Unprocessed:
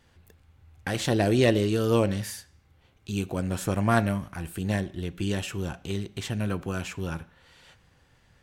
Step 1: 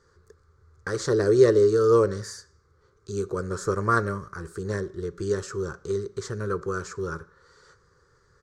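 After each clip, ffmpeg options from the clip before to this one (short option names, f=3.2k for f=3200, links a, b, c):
-af "firequalizer=gain_entry='entry(150,0);entry(260,-8);entry(410,15);entry(710,-12);entry(1200,13);entry(2700,-19);entry(4500,4);entry(6800,5);entry(12000,-15)':delay=0.05:min_phase=1,volume=-3dB"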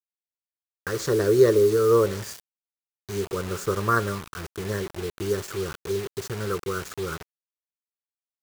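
-af "acrusher=bits=5:mix=0:aa=0.000001"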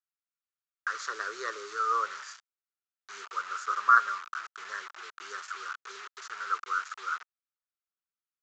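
-af "highpass=f=1.3k:t=q:w=4.7,aresample=16000,aresample=44100,volume=-7.5dB"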